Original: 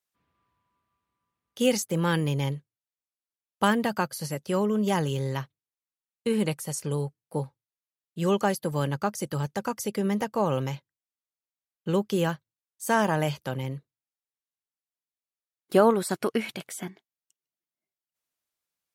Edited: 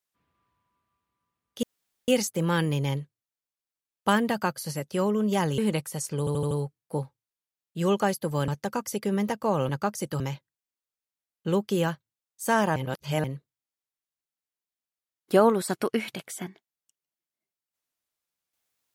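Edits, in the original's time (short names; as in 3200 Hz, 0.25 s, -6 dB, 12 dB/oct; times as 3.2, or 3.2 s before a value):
1.63 insert room tone 0.45 s
5.13–6.31 cut
6.92 stutter 0.08 s, 5 plays
8.89–9.4 move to 10.61
13.17–13.65 reverse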